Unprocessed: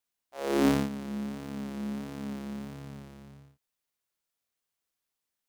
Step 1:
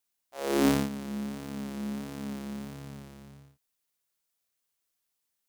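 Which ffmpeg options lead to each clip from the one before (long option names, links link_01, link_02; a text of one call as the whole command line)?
ffmpeg -i in.wav -af "highshelf=frequency=4800:gain=6" out.wav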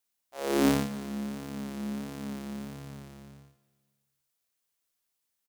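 ffmpeg -i in.wav -af "aecho=1:1:153|306|459|612|765:0.106|0.0614|0.0356|0.0207|0.012" out.wav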